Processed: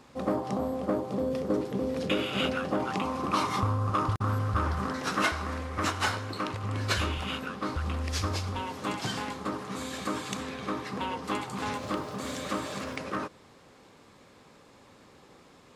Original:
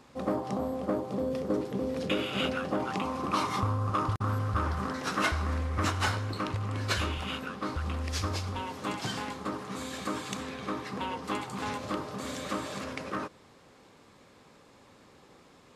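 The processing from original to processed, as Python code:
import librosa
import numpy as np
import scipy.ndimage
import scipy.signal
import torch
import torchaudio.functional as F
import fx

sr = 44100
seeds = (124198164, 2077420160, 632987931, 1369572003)

y = fx.low_shelf(x, sr, hz=110.0, db=-12.0, at=(5.26, 6.64))
y = fx.dmg_crackle(y, sr, seeds[0], per_s=390.0, level_db=-49.0, at=(11.72, 12.96), fade=0.02)
y = y * 10.0 ** (1.5 / 20.0)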